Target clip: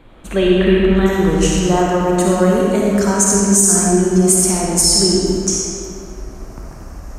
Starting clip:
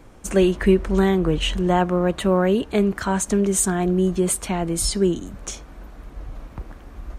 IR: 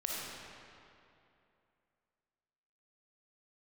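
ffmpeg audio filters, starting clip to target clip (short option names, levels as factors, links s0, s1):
-filter_complex "[0:a]asetnsamples=n=441:p=0,asendcmd='1.06 highshelf g 8',highshelf=f=4500:t=q:w=3:g=-7.5[s0];[1:a]atrim=start_sample=2205[s1];[s0][s1]afir=irnorm=-1:irlink=0,alimiter=level_in=1.41:limit=0.891:release=50:level=0:latency=1,volume=0.891"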